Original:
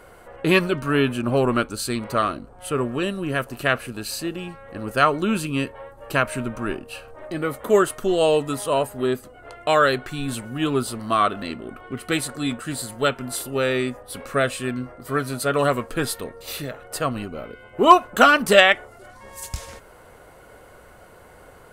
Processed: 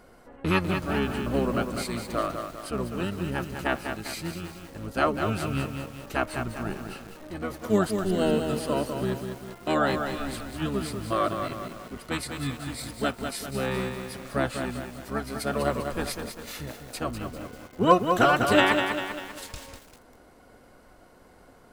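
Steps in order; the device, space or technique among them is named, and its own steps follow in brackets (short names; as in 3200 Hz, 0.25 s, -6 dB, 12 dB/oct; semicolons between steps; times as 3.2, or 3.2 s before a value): octave pedal (harmoniser -12 st -1 dB); lo-fi delay 0.198 s, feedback 55%, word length 6-bit, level -6 dB; gain -9 dB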